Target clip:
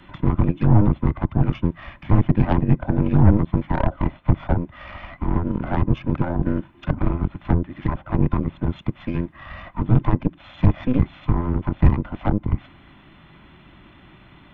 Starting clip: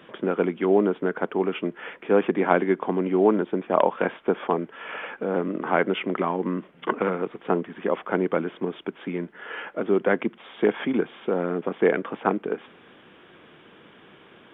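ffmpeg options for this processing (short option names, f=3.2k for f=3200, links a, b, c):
-filter_complex "[0:a]afftfilt=real='real(if(between(b,1,1008),(2*floor((b-1)/24)+1)*24-b,b),0)':imag='imag(if(between(b,1,1008),(2*floor((b-1)/24)+1)*24-b,b),0)*if(between(b,1,1008),-1,1)':win_size=2048:overlap=0.75,acrossover=split=170|350|740[a][b][c][d];[d]acompressor=threshold=-38dB:ratio=10[e];[a][b][c][e]amix=inputs=4:normalize=0,aeval=exprs='0.376*(cos(1*acos(clip(val(0)/0.376,-1,1)))-cos(1*PI/2))+0.0596*(cos(6*acos(clip(val(0)/0.376,-1,1)))-cos(6*PI/2))':c=same,lowshelf=f=290:g=6.5"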